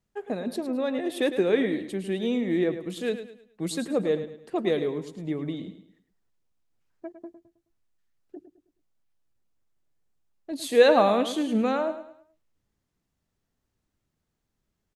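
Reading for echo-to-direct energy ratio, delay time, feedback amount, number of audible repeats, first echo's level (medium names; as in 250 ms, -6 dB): -10.5 dB, 106 ms, 36%, 3, -11.0 dB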